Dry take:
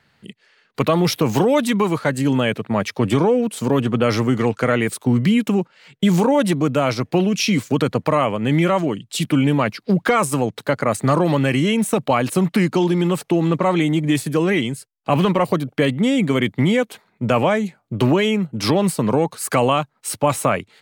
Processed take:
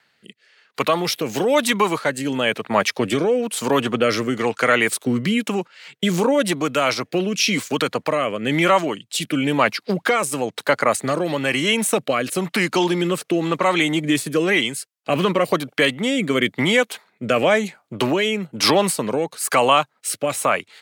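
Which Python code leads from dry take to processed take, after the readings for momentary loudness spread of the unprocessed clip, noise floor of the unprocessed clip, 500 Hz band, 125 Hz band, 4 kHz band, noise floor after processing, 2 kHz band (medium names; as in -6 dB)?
5 LU, -65 dBFS, -0.5 dB, -8.5 dB, +4.5 dB, -67 dBFS, +4.0 dB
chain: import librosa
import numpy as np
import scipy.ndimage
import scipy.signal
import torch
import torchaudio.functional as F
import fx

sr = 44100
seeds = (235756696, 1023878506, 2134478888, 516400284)

y = fx.highpass(x, sr, hz=820.0, slope=6)
y = fx.rider(y, sr, range_db=10, speed_s=2.0)
y = fx.rotary(y, sr, hz=1.0)
y = F.gain(torch.from_numpy(y), 7.0).numpy()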